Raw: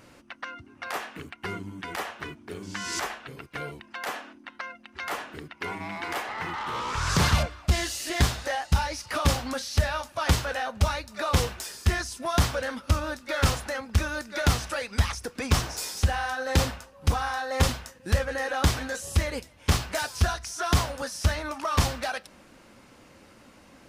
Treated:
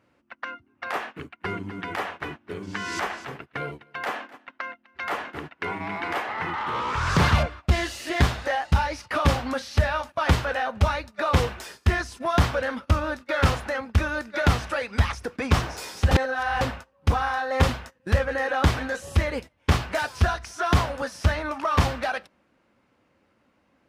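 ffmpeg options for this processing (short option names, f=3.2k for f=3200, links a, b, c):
-filter_complex "[0:a]asettb=1/sr,asplit=3[a][b][c];[a]atrim=end=1.154[d];[b]atrim=start=1.15:end=6.12,asetpts=PTS-STARTPTS,afade=t=in:d=0.004:c=qsin,afade=t=out:st=4.966:d=0.004:c=qsin,aecho=1:1:253:0.266,atrim=end_sample=219177[e];[c]atrim=start=6.116[f];[d][e]acrossfade=d=0.004:c1=hsin:c2=qsin[g];[g][f]acrossfade=d=0.004:c1=qsin:c2=hsin,asplit=3[h][i][j];[h]atrim=end=16.112[k];[i]atrim=start=16.108:end=16.612,asetpts=PTS-STARTPTS,areverse[l];[j]atrim=start=16.608[m];[k][l]acrossfade=d=0.004:c1=hsin:c2=hsin[n];[n][m]acrossfade=d=0.004:c1=hsin:c2=hsin,highpass=48,agate=range=-16dB:threshold=-40dB:ratio=16:detection=peak,bass=f=250:g=-1,treble=f=4k:g=-12,volume=4dB"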